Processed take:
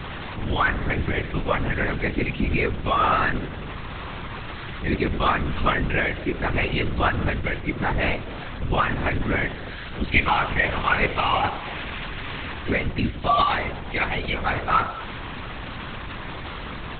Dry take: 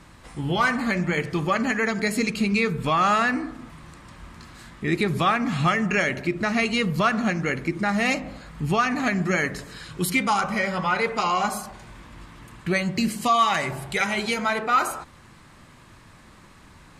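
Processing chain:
linear delta modulator 64 kbit/s, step −26.5 dBFS
0:10.10–0:12.54: parametric band 2,500 Hz +6 dB 1.3 octaves
linear-prediction vocoder at 8 kHz whisper

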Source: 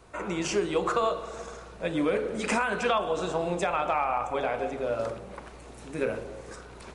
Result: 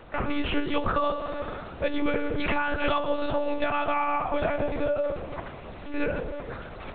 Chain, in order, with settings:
mains-hum notches 60/120/180/240/300 Hz
downward compressor 4 to 1, threshold −30 dBFS, peak gain reduction 8 dB
one-pitch LPC vocoder at 8 kHz 290 Hz
level +7.5 dB

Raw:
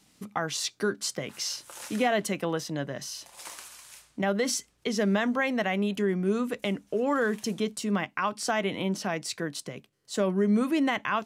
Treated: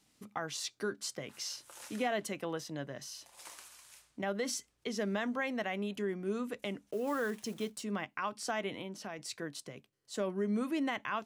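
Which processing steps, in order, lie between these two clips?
0:06.91–0:07.83: one scale factor per block 5 bits
0:08.75–0:09.19: downward compressor 2 to 1, threshold −33 dBFS, peak gain reduction 5 dB
parametric band 180 Hz −6 dB 0.24 octaves
level −8 dB

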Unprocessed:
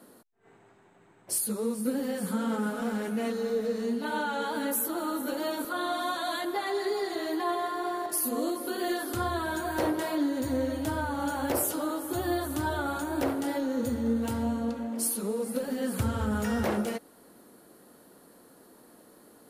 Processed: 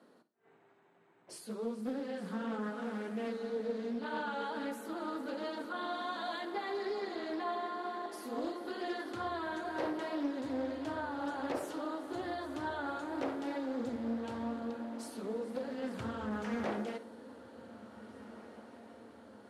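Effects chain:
band-pass filter 160–4,500 Hz
mains-hum notches 50/100/150/200/250/300/350 Hz
feedback delay with all-pass diffusion 1,793 ms, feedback 65%, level −15.5 dB
four-comb reverb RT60 0.34 s, DRR 14 dB
highs frequency-modulated by the lows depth 0.28 ms
level −7 dB

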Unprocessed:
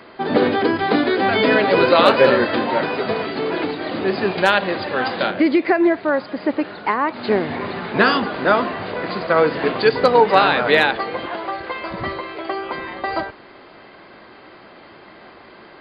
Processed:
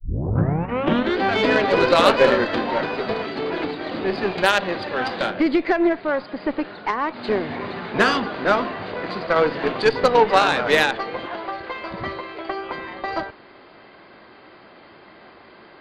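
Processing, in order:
turntable start at the beginning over 1.18 s
harmonic generator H 3 −22 dB, 6 −25 dB, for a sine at −1 dBFS
level −1 dB

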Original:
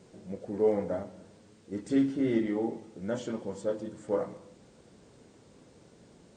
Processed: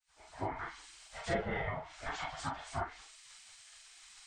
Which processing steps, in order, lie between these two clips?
fade in at the beginning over 1.15 s
treble cut that deepens with the level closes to 1,300 Hz, closed at −27 dBFS
gate on every frequency bin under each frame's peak −25 dB weak
low-shelf EQ 82 Hz +11.5 dB
time stretch by phase vocoder 0.67×
on a send: convolution reverb, pre-delay 37 ms, DRR 2.5 dB
on the sum: level +16 dB

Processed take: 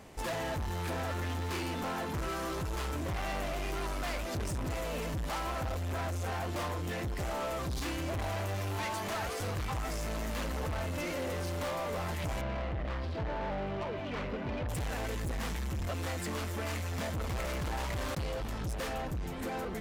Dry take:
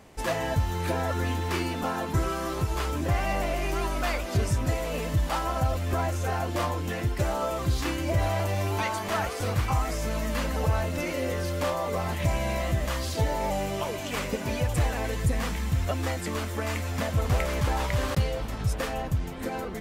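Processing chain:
0:12.41–0:14.69: high-frequency loss of the air 370 metres
soft clipping −32.5 dBFS, distortion −7 dB

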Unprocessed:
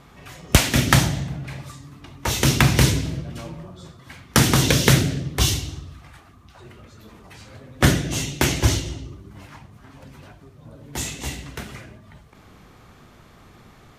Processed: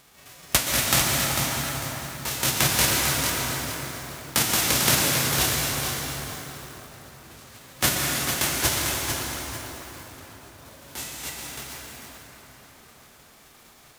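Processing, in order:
spectral envelope flattened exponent 0.3
dense smooth reverb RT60 4.9 s, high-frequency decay 0.55×, pre-delay 110 ms, DRR −0.5 dB
feedback echo at a low word length 448 ms, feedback 35%, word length 5 bits, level −6.5 dB
level −7 dB

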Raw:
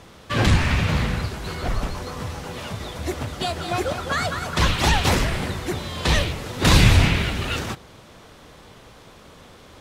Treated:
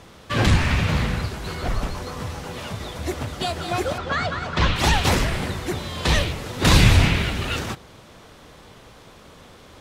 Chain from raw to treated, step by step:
0:03.98–0:04.76: low-pass filter 4,300 Hz 12 dB per octave

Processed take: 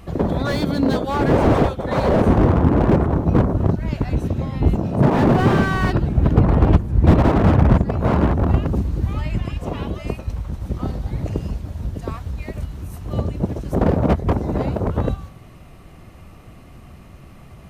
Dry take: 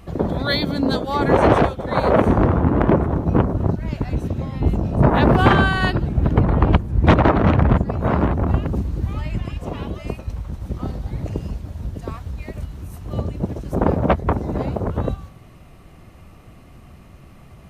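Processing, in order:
0:04.75–0:05.74: high-pass filter 110 Hz
slew-rate limiting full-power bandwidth 84 Hz
level +2 dB

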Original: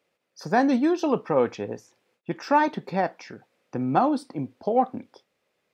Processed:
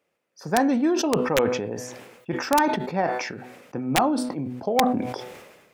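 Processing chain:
parametric band 4,100 Hz −5.5 dB 0.81 octaves
hum removal 124.8 Hz, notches 37
wrap-around overflow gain 10 dB
level that may fall only so fast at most 47 dB per second

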